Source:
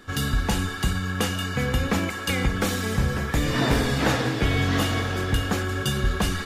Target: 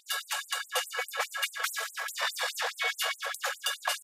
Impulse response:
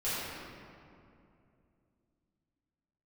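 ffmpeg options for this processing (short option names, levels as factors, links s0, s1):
-filter_complex "[0:a]atempo=1.6,asplit=2[s0][s1];[1:a]atrim=start_sample=2205,afade=t=out:st=0.34:d=0.01,atrim=end_sample=15435[s2];[s1][s2]afir=irnorm=-1:irlink=0,volume=0.0501[s3];[s0][s3]amix=inputs=2:normalize=0,afftfilt=real='re*gte(b*sr/1024,450*pow(7800/450,0.5+0.5*sin(2*PI*4.8*pts/sr)))':imag='im*gte(b*sr/1024,450*pow(7800/450,0.5+0.5*sin(2*PI*4.8*pts/sr)))':win_size=1024:overlap=0.75"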